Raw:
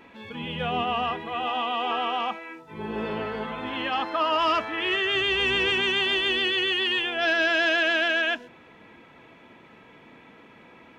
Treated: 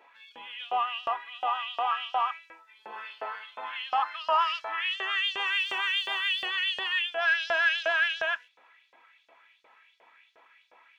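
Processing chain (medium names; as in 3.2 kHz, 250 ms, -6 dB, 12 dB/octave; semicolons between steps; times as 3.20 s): 5.51–6.46 s: median filter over 3 samples; dynamic bell 1.1 kHz, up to +7 dB, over -38 dBFS, Q 0.97; LFO high-pass saw up 2.8 Hz 560–5500 Hz; trim -9 dB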